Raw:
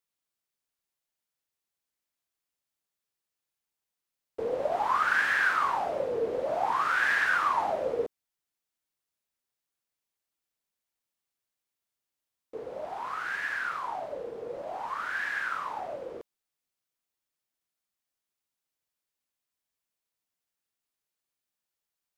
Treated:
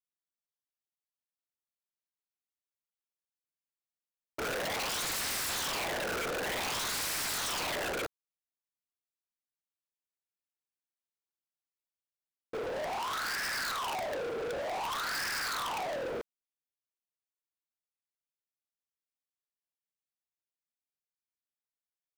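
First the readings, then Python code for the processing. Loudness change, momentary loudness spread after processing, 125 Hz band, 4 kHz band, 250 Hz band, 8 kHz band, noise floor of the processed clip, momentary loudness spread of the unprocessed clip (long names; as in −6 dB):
−4.0 dB, 6 LU, +4.0 dB, +9.0 dB, +1.5 dB, +15.5 dB, below −85 dBFS, 14 LU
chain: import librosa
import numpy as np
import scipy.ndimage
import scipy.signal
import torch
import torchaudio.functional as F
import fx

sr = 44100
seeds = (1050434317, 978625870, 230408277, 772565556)

y = (np.mod(10.0 ** (28.0 / 20.0) * x + 1.0, 2.0) - 1.0) / 10.0 ** (28.0 / 20.0)
y = fx.leveller(y, sr, passes=5)
y = y * 10.0 ** (-5.0 / 20.0)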